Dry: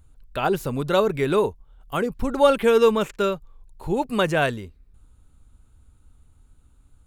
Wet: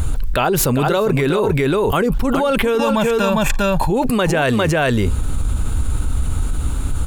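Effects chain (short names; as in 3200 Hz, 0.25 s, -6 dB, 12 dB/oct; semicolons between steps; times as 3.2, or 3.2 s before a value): 2.79–3.9 comb 1.2 ms, depth 78%; echo 0.402 s -7.5 dB; fast leveller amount 100%; gain -4.5 dB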